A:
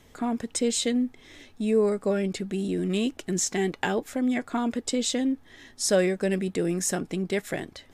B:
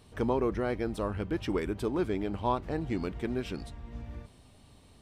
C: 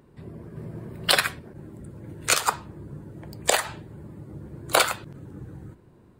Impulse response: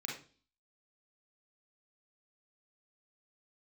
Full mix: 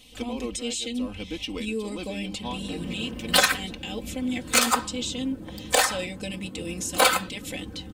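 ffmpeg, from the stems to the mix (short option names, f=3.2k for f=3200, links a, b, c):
-filter_complex "[0:a]volume=-8.5dB,asplit=2[a][b];[1:a]volume=-4dB[c];[2:a]asoftclip=type=tanh:threshold=-14.5dB,adelay=2250,volume=1.5dB[d];[b]apad=whole_len=221220[e];[c][e]sidechaincompress=threshold=-37dB:ratio=4:attack=16:release=104[f];[a][f]amix=inputs=2:normalize=0,highshelf=f=2.1k:t=q:w=3:g=9.5,alimiter=limit=-23.5dB:level=0:latency=1:release=144,volume=0dB[g];[d][g]amix=inputs=2:normalize=0,aecho=1:1:3.9:0.85"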